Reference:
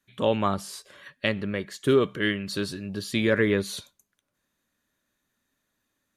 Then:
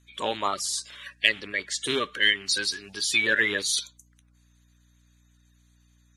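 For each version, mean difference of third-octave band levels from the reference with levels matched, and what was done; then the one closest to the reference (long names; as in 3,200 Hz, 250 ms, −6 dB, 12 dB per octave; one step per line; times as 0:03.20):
7.0 dB: spectral magnitudes quantised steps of 30 dB
meter weighting curve ITU-R 468
mains hum 60 Hz, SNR 32 dB
in parallel at −12 dB: hard clipping −11.5 dBFS, distortion −16 dB
on the sum: level −1.5 dB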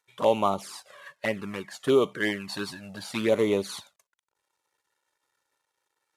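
5.0 dB: variable-slope delta modulation 64 kbit/s
high-pass filter 270 Hz 6 dB per octave
parametric band 910 Hz +9 dB 1.4 octaves
flanger swept by the level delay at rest 2.2 ms, full sweep at −19 dBFS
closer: second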